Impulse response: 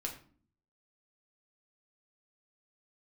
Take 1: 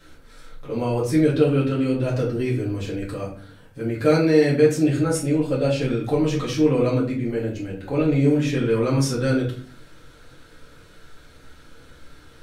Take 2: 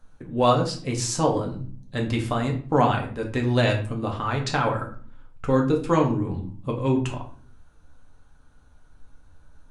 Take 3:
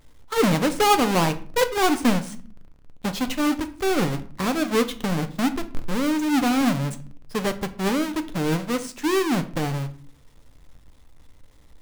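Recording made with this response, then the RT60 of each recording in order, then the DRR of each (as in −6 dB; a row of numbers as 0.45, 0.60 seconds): 2; 0.45, 0.45, 0.45 seconds; −6.5, 0.0, 8.0 decibels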